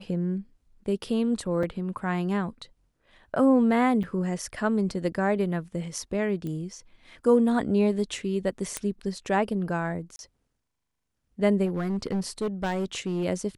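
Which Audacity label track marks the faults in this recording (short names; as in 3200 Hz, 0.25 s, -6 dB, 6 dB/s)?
1.630000	1.630000	gap 3.5 ms
4.030000	4.040000	gap 6.4 ms
6.470000	6.470000	pop -24 dBFS
8.770000	8.770000	pop -14 dBFS
10.160000	10.190000	gap 31 ms
11.650000	13.250000	clipped -23.5 dBFS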